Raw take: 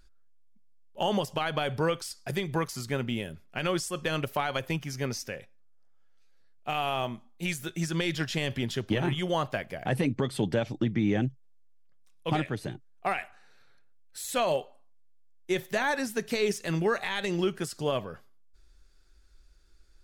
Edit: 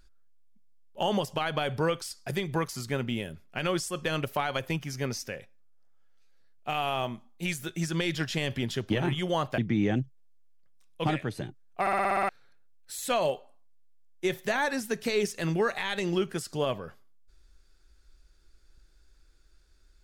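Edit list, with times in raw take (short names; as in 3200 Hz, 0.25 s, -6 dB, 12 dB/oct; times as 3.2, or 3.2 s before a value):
9.58–10.84 cut
13.07 stutter in place 0.06 s, 8 plays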